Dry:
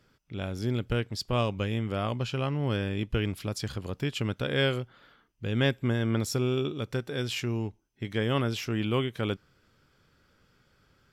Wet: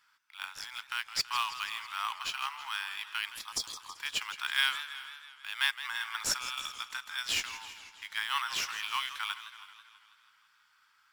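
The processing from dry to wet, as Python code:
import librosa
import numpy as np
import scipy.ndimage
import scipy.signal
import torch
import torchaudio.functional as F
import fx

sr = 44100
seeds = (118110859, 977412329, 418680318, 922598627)

p1 = scipy.signal.sosfilt(scipy.signal.butter(12, 890.0, 'highpass', fs=sr, output='sos'), x)
p2 = p1 + fx.echo_single(p1, sr, ms=386, db=-20.0, dry=0)
p3 = fx.dynamic_eq(p2, sr, hz=6000.0, q=0.8, threshold_db=-51.0, ratio=4.0, max_db=6)
p4 = fx.sample_hold(p3, sr, seeds[0], rate_hz=7000.0, jitter_pct=0)
p5 = p3 + F.gain(torch.from_numpy(p4), -9.5).numpy()
p6 = fx.spec_erase(p5, sr, start_s=3.29, length_s=0.66, low_hz=1300.0, high_hz=3200.0)
y = fx.echo_warbled(p6, sr, ms=163, feedback_pct=63, rate_hz=2.8, cents=135, wet_db=-13.0)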